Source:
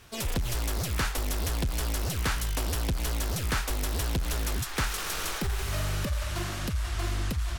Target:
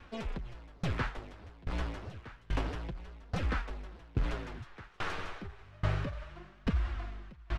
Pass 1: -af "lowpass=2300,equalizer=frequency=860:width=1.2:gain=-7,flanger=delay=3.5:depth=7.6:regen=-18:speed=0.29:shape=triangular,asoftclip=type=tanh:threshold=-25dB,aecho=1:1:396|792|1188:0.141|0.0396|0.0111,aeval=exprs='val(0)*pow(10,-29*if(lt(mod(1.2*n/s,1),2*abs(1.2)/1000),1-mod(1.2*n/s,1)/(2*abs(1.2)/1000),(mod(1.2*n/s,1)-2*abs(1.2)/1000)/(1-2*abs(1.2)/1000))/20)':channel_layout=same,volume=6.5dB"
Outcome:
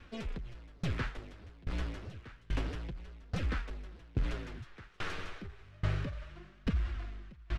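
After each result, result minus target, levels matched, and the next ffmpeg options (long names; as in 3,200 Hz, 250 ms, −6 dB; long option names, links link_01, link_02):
soft clipping: distortion +16 dB; 1,000 Hz band −4.0 dB
-af "lowpass=2300,equalizer=frequency=860:width=1.2:gain=-7,flanger=delay=3.5:depth=7.6:regen=-18:speed=0.29:shape=triangular,asoftclip=type=tanh:threshold=-15.5dB,aecho=1:1:396|792|1188:0.141|0.0396|0.0111,aeval=exprs='val(0)*pow(10,-29*if(lt(mod(1.2*n/s,1),2*abs(1.2)/1000),1-mod(1.2*n/s,1)/(2*abs(1.2)/1000),(mod(1.2*n/s,1)-2*abs(1.2)/1000)/(1-2*abs(1.2)/1000))/20)':channel_layout=same,volume=6.5dB"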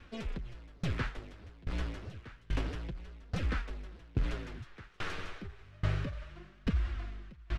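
1,000 Hz band −4.0 dB
-af "lowpass=2300,flanger=delay=3.5:depth=7.6:regen=-18:speed=0.29:shape=triangular,asoftclip=type=tanh:threshold=-15.5dB,aecho=1:1:396|792|1188:0.141|0.0396|0.0111,aeval=exprs='val(0)*pow(10,-29*if(lt(mod(1.2*n/s,1),2*abs(1.2)/1000),1-mod(1.2*n/s,1)/(2*abs(1.2)/1000),(mod(1.2*n/s,1)-2*abs(1.2)/1000)/(1-2*abs(1.2)/1000))/20)':channel_layout=same,volume=6.5dB"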